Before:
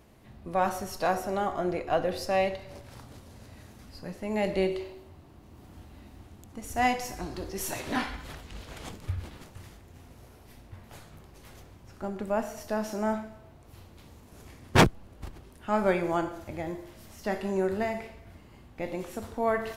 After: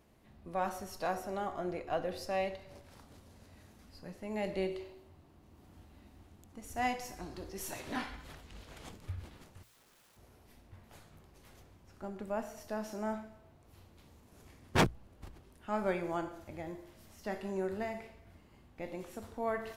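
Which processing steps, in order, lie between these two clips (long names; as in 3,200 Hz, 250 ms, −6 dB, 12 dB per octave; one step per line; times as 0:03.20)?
0:09.63–0:10.17: wrap-around overflow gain 53 dB
mains-hum notches 60/120 Hz
level −8 dB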